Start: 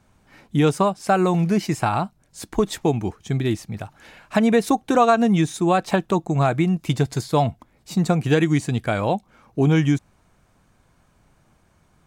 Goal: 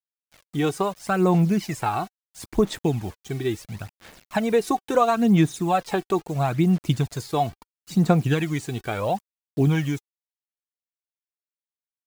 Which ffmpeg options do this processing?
-af "acrusher=bits=6:mix=0:aa=0.000001,aphaser=in_gain=1:out_gain=1:delay=2.7:decay=0.52:speed=0.74:type=sinusoidal,volume=0.562"

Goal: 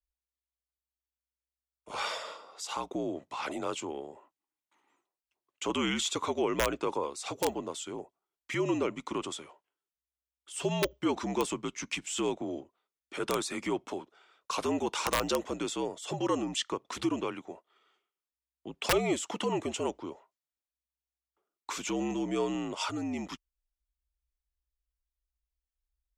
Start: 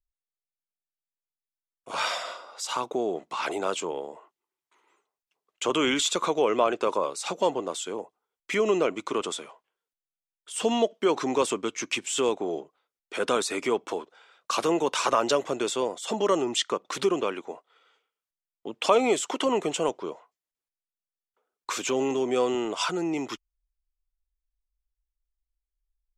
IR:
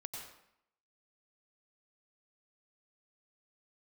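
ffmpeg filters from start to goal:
-af "aeval=exprs='(mod(3.76*val(0)+1,2)-1)/3.76':c=same,afreqshift=-63,volume=0.501"

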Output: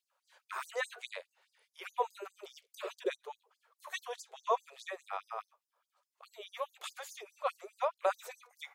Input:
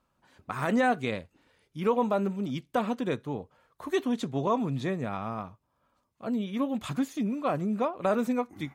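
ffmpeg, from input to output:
-filter_complex "[0:a]asettb=1/sr,asplit=3[s0][s1][s2];[s0]atrim=end=2.494[s3];[s1]atrim=start=2.49:end=3.23,asetpts=PTS-STARTPTS,afade=t=in:d=0.004:c=qsin,afade=t=out:st=0.736:d=0.004:c=qsin,lowshelf=f=600:t=q:w=3:g=10[s4];[s2]atrim=start=3.226[s5];[s3][s4]acrossfade=d=0.004:c1=hsin:c2=qsin[s6];[s6][s5]acrossfade=d=0.004:c1=qsin:c2=hsin,afftfilt=real='re*gte(b*sr/1024,380*pow(4800/380,0.5+0.5*sin(2*PI*4.8*pts/sr)))':imag='im*gte(b*sr/1024,380*pow(4800/380,0.5+0.5*sin(2*PI*4.8*pts/sr)))':win_size=1024:overlap=0.75,volume=0.794"

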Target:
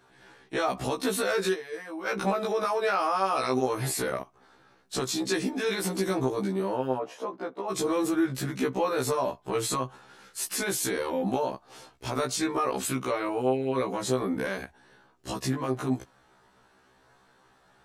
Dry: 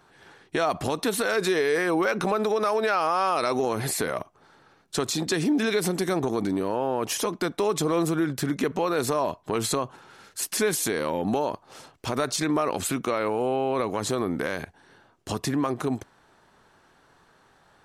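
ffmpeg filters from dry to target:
-filter_complex "[0:a]asplit=3[s0][s1][s2];[s0]afade=t=out:st=1.53:d=0.02[s3];[s1]agate=range=0.224:threshold=0.1:ratio=16:detection=peak,afade=t=in:st=1.53:d=0.02,afade=t=out:st=2.05:d=0.02[s4];[s2]afade=t=in:st=2.05:d=0.02[s5];[s3][s4][s5]amix=inputs=3:normalize=0,asplit=3[s6][s7][s8];[s6]afade=t=out:st=6.97:d=0.02[s9];[s7]bandpass=f=640:t=q:w=1.1:csg=0,afade=t=in:st=6.97:d=0.02,afade=t=out:st=7.69:d=0.02[s10];[s8]afade=t=in:st=7.69:d=0.02[s11];[s9][s10][s11]amix=inputs=3:normalize=0,afftfilt=real='re*1.73*eq(mod(b,3),0)':imag='im*1.73*eq(mod(b,3),0)':win_size=2048:overlap=0.75"

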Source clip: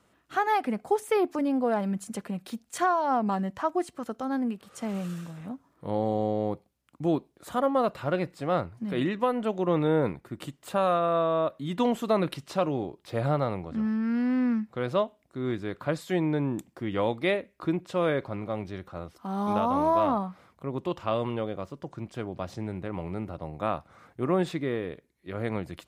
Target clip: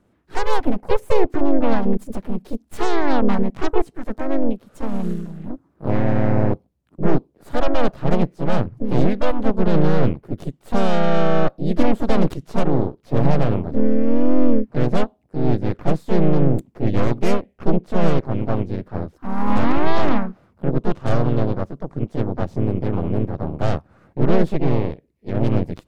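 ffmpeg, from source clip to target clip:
-filter_complex "[0:a]aeval=exprs='0.2*(cos(1*acos(clip(val(0)/0.2,-1,1)))-cos(1*PI/2))+0.0794*(cos(6*acos(clip(val(0)/0.2,-1,1)))-cos(6*PI/2))':c=same,tiltshelf=f=670:g=8,asplit=3[s0][s1][s2];[s1]asetrate=52444,aresample=44100,atempo=0.840896,volume=0.631[s3];[s2]asetrate=58866,aresample=44100,atempo=0.749154,volume=0.316[s4];[s0][s3][s4]amix=inputs=3:normalize=0,volume=0.891"

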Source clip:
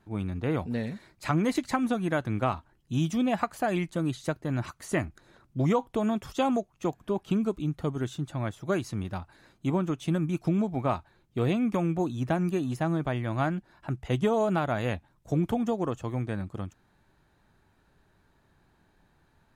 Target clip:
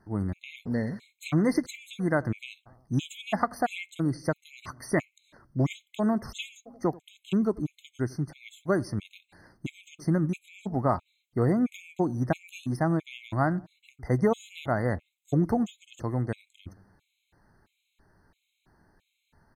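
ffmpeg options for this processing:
-filter_complex "[0:a]asplit=2[s0][s1];[s1]adelay=88,lowpass=f=1000:p=1,volume=0.0841,asplit=2[s2][s3];[s3]adelay=88,lowpass=f=1000:p=1,volume=0.54,asplit=2[s4][s5];[s5]adelay=88,lowpass=f=1000:p=1,volume=0.54,asplit=2[s6][s7];[s7]adelay=88,lowpass=f=1000:p=1,volume=0.54[s8];[s0][s2][s4][s6][s8]amix=inputs=5:normalize=0,afftfilt=real='re*gt(sin(2*PI*1.5*pts/sr)*(1-2*mod(floor(b*sr/1024/2100),2)),0)':imag='im*gt(sin(2*PI*1.5*pts/sr)*(1-2*mod(floor(b*sr/1024/2100),2)),0)':win_size=1024:overlap=0.75,volume=1.33"

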